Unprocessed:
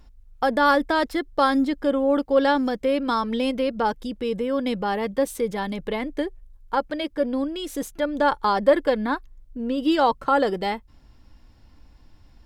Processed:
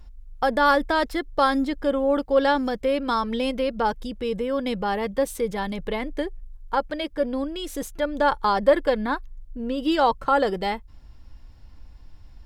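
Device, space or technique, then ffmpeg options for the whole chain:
low shelf boost with a cut just above: -af "lowshelf=f=84:g=8,equalizer=f=270:t=o:w=0.89:g=-3.5"

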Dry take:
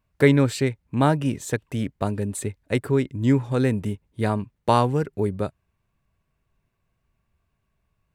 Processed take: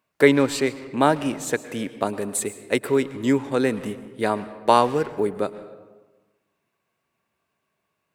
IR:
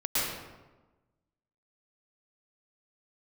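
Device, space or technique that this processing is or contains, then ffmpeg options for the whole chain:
saturated reverb return: -filter_complex "[0:a]asettb=1/sr,asplit=3[s0][s1][s2];[s0]atrim=end=2.094[s3];[s1]atrim=start=2.09:end=3.38,asetpts=PTS-STARTPTS,afade=t=in:d=0.004:c=qsin,afade=t=out:st=1.286:d=0.004:c=qsin,highshelf=f=5700:g=5[s4];[s2]atrim=start=3.376[s5];[s3][s4]acrossfade=d=0.004:c1=hsin:c2=qsin[s6];[s6][s5]acrossfade=d=0.004:c1=qsin:c2=hsin,highpass=290,asplit=2[s7][s8];[1:a]atrim=start_sample=2205[s9];[s8][s9]afir=irnorm=-1:irlink=0,asoftclip=type=tanh:threshold=0.168,volume=0.0944[s10];[s7][s10]amix=inputs=2:normalize=0,volume=1.41"

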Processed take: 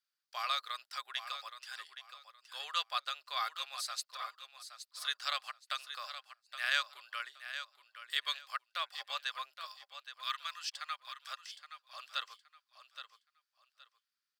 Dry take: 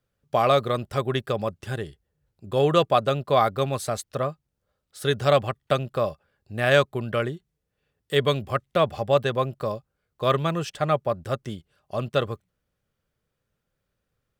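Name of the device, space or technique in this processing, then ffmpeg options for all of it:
headphones lying on a table: -filter_complex "[0:a]highpass=f=1200:w=0.5412,highpass=f=1200:w=1.3066,equalizer=f=4700:t=o:w=0.54:g=12,asettb=1/sr,asplit=3[s0][s1][s2];[s0]atrim=end=9.654[s3];[s1]atrim=start=9.65:end=11.28,asetpts=PTS-STARTPTS,afade=t=in:d=0.004:c=qsin,afade=t=out:st=1.626:d=0.004:c=qsin,highpass=1200[s4];[s2]atrim=start=11.276[s5];[s3][s4]acrossfade=d=0.004:c1=hsin:c2=qsin[s6];[s6][s5]acrossfade=d=0.004:c1=qsin:c2=hsin,aecho=1:1:820|1640|2460:0.299|0.0716|0.0172,volume=0.376"

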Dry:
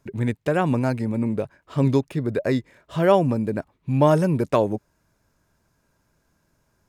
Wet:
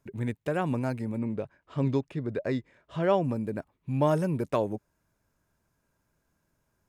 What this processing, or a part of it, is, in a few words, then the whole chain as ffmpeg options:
exciter from parts: -filter_complex "[0:a]asettb=1/sr,asplit=3[s0][s1][s2];[s0]atrim=end=1.184[s3];[s1]atrim=start=1.18:end=3.24,asetpts=PTS-STARTPTS,afade=t=in:d=0.004:c=qsin,afade=t=out:st=2.056:d=0.004:c=qsin,lowpass=5900[s4];[s2]atrim=start=3.236[s5];[s3][s4]acrossfade=d=0.004:c1=hsin:c2=qsin[s6];[s6][s5]acrossfade=d=0.004:c1=qsin:c2=hsin,asplit=2[s7][s8];[s8]highpass=f=4600:p=1,asoftclip=type=tanh:threshold=0.0133,highpass=f=3600:w=0.5412,highpass=f=3600:w=1.3066,volume=0.376[s9];[s7][s9]amix=inputs=2:normalize=0,volume=0.422"

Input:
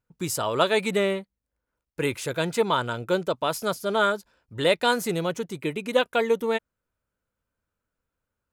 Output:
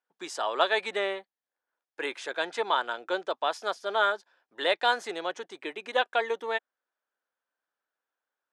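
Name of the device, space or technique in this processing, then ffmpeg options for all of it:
phone speaker on a table: -af "highpass=f=340:w=0.5412,highpass=f=340:w=1.3066,equalizer=f=470:t=q:w=4:g=-3,equalizer=f=770:t=q:w=4:g=9,equalizer=f=1100:t=q:w=4:g=3,equalizer=f=1700:t=q:w=4:g=9,equalizer=f=3400:t=q:w=4:g=5,equalizer=f=7300:t=q:w=4:g=-4,lowpass=f=7600:w=0.5412,lowpass=f=7600:w=1.3066,volume=0.501"

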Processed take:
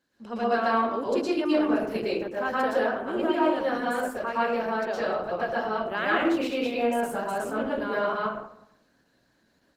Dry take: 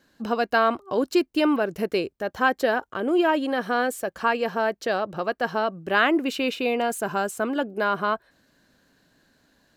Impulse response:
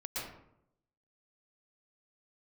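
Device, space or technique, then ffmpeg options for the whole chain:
far-field microphone of a smart speaker: -filter_complex "[1:a]atrim=start_sample=2205[s0];[0:a][s0]afir=irnorm=-1:irlink=0,highpass=f=92:p=1,dynaudnorm=f=180:g=3:m=1.41,volume=0.447" -ar 48000 -c:a libopus -b:a 16k

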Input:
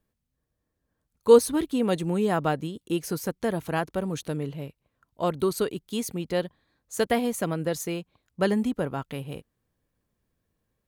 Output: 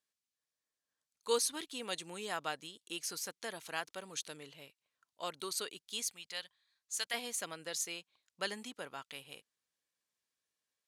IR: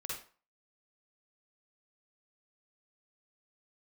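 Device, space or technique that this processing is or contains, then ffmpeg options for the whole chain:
piezo pickup straight into a mixer: -filter_complex "[0:a]lowpass=6000,aderivative,asettb=1/sr,asplit=3[s0][s1][s2];[s0]atrim=end=6.024[s3];[s1]atrim=start=6.02:end=7.14,asetpts=PTS-STARTPTS,afade=t=in:d=0.004:c=qsin,afade=t=out:st=1.116:d=0.004:c=qsin,equalizer=f=320:w=0.6:g=-13.5[s4];[s2]atrim=start=7.136[s5];[s3][s4]acrossfade=d=0.004:c1=hsin:c2=qsin[s6];[s6][s5]acrossfade=d=0.004:c1=qsin:c2=hsin,volume=1.88"

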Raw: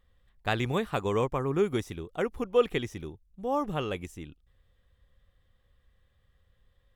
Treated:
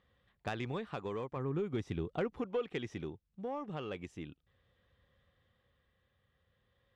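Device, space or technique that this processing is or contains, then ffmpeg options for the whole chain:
AM radio: -filter_complex "[0:a]highpass=110,lowpass=4200,acompressor=threshold=0.02:ratio=4,asoftclip=type=tanh:threshold=0.0447,tremolo=f=0.4:d=0.36,asettb=1/sr,asplit=3[s0][s1][s2];[s0]atrim=end=1.364[s3];[s1]atrim=start=1.36:end=2.34,asetpts=PTS-STARTPTS,afade=t=in:d=0.004:c=qsin,afade=t=out:st=0.976:d=0.004:c=qsin,lowshelf=f=220:g=9[s4];[s2]atrim=start=2.336[s5];[s3][s4]acrossfade=d=0.004:c1=hsin:c2=qsin[s6];[s6][s5]acrossfade=d=0.004:c1=qsin:c2=hsin,volume=1.19"

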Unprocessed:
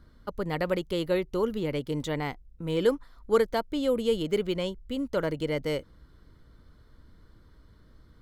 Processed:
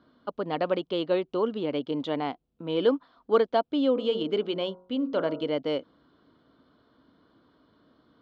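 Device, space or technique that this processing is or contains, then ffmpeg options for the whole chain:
kitchen radio: -filter_complex "[0:a]asplit=3[s0][s1][s2];[s0]afade=t=out:st=3.95:d=0.02[s3];[s1]bandreject=f=45.45:t=h:w=4,bandreject=f=90.9:t=h:w=4,bandreject=f=136.35:t=h:w=4,bandreject=f=181.8:t=h:w=4,bandreject=f=227.25:t=h:w=4,bandreject=f=272.7:t=h:w=4,bandreject=f=318.15:t=h:w=4,bandreject=f=363.6:t=h:w=4,bandreject=f=409.05:t=h:w=4,bandreject=f=454.5:t=h:w=4,bandreject=f=499.95:t=h:w=4,bandreject=f=545.4:t=h:w=4,bandreject=f=590.85:t=h:w=4,bandreject=f=636.3:t=h:w=4,bandreject=f=681.75:t=h:w=4,bandreject=f=727.2:t=h:w=4,bandreject=f=772.65:t=h:w=4,bandreject=f=818.1:t=h:w=4,bandreject=f=863.55:t=h:w=4,bandreject=f=909:t=h:w=4,bandreject=f=954.45:t=h:w=4,bandreject=f=999.9:t=h:w=4,bandreject=f=1045.35:t=h:w=4,bandreject=f=1090.8:t=h:w=4,bandreject=f=1136.25:t=h:w=4,bandreject=f=1181.7:t=h:w=4,bandreject=f=1227.15:t=h:w=4,bandreject=f=1272.6:t=h:w=4,bandreject=f=1318.05:t=h:w=4,bandreject=f=1363.5:t=h:w=4,bandreject=f=1408.95:t=h:w=4,bandreject=f=1454.4:t=h:w=4,afade=t=in:st=3.95:d=0.02,afade=t=out:st=5.47:d=0.02[s4];[s2]afade=t=in:st=5.47:d=0.02[s5];[s3][s4][s5]amix=inputs=3:normalize=0,highpass=230,equalizer=f=270:t=q:w=4:g=7,equalizer=f=690:t=q:w=4:g=7,equalizer=f=1100:t=q:w=4:g=3,equalizer=f=2000:t=q:w=4:g=-8,equalizer=f=3100:t=q:w=4:g=4,lowpass=f=4200:w=0.5412,lowpass=f=4200:w=1.3066"

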